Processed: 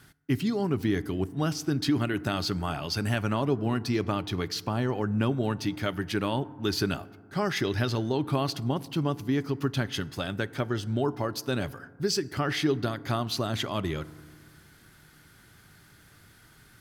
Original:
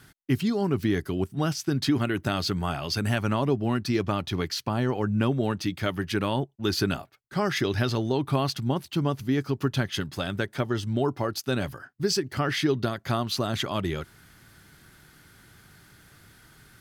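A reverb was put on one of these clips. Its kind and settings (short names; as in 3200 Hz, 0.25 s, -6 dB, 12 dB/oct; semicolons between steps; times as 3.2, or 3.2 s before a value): FDN reverb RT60 1.7 s, low-frequency decay 1.25×, high-frequency decay 0.35×, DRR 17 dB; gain -2 dB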